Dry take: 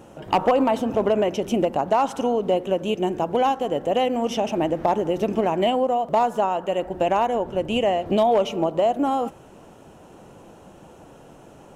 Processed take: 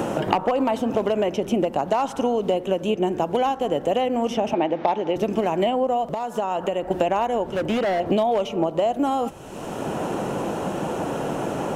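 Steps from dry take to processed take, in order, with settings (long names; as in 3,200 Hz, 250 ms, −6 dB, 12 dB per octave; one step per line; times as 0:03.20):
0:04.53–0:05.16: loudspeaker in its box 220–5,300 Hz, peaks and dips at 840 Hz +5 dB, 2,300 Hz +6 dB, 3,600 Hz +5 dB
0:06.08–0:06.91: downward compressor 10 to 1, threshold −30 dBFS, peak gain reduction 15 dB
0:07.53–0:08.00: gain into a clipping stage and back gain 25 dB
multiband upward and downward compressor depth 100%
level −1 dB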